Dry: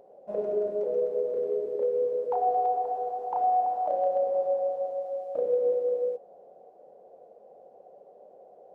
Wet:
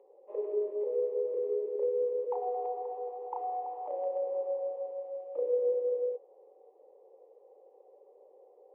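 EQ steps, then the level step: high-pass 330 Hz 24 dB/octave; low-pass 1.3 kHz 6 dB/octave; static phaser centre 1 kHz, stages 8; -1.5 dB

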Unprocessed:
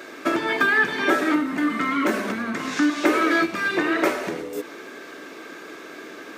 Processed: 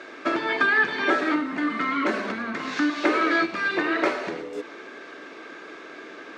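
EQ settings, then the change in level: dynamic bell 4.3 kHz, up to +5 dB, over -51 dBFS, Q 5.3; distance through air 120 m; bass shelf 290 Hz -7 dB; 0.0 dB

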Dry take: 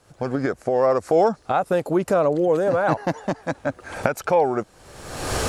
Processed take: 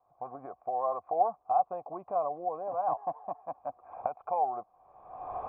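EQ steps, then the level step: cascade formant filter a; 0.0 dB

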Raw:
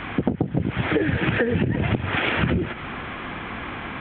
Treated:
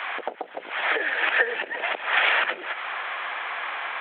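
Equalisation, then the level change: high-pass 610 Hz 24 dB/octave; dynamic bell 1.8 kHz, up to +4 dB, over -44 dBFS, Q 8; +3.0 dB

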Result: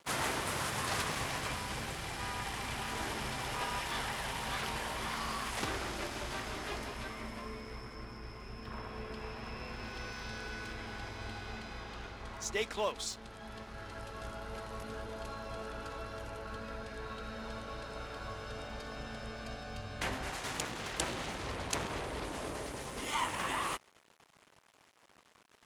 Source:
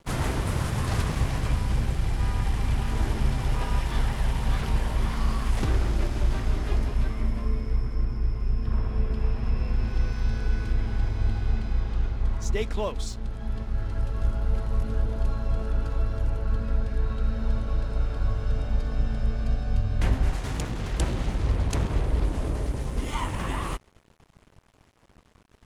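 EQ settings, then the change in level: high-pass 880 Hz 6 dB/octave; +1.0 dB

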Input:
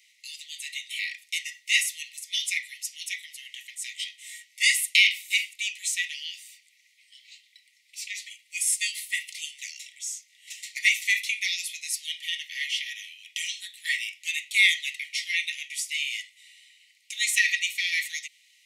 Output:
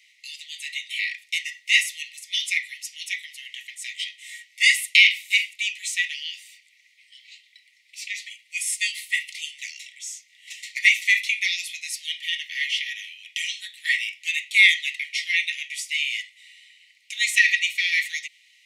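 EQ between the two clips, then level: treble shelf 4.4 kHz -12 dB; +7.5 dB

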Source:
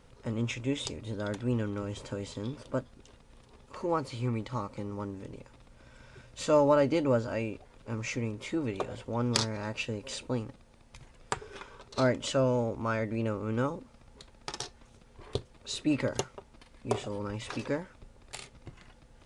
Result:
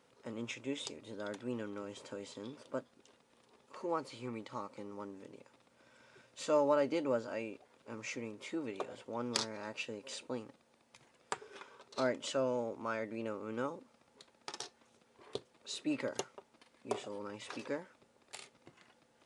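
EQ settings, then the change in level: high-pass 250 Hz 12 dB/octave; -6.0 dB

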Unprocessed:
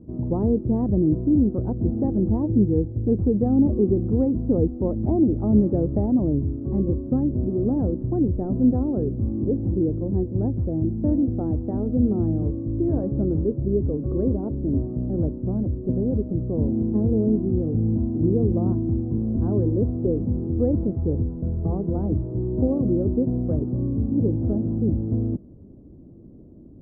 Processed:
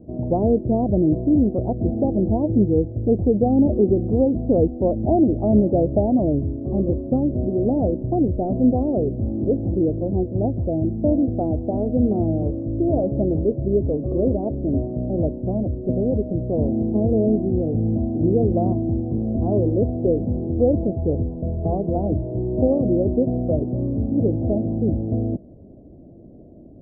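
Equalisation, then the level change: resonant low-pass 670 Hz, resonance Q 4.9; 0.0 dB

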